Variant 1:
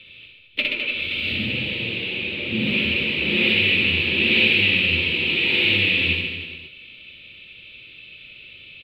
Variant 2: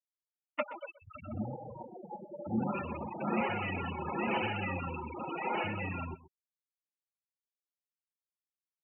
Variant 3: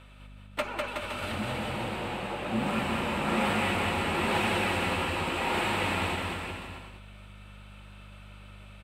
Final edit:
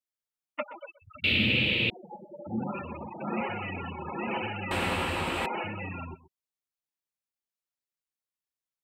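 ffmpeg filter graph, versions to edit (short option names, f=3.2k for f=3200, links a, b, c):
-filter_complex "[1:a]asplit=3[a][b][c];[a]atrim=end=1.242[d];[0:a]atrim=start=1.238:end=1.902[e];[b]atrim=start=1.898:end=4.712[f];[2:a]atrim=start=4.708:end=5.462[g];[c]atrim=start=5.458[h];[d][e]acrossfade=d=0.004:c1=hsin:c2=hsin[i];[i][f]acrossfade=d=0.004:c1=hsin:c2=hsin[j];[j][g]acrossfade=d=0.004:c1=hsin:c2=hsin[k];[k][h]acrossfade=d=0.004:c1=hsin:c2=hsin"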